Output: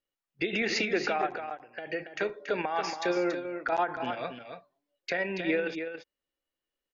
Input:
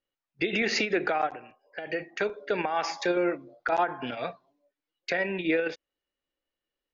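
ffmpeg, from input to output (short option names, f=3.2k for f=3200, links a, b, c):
-af "aecho=1:1:281:0.398,volume=-2.5dB"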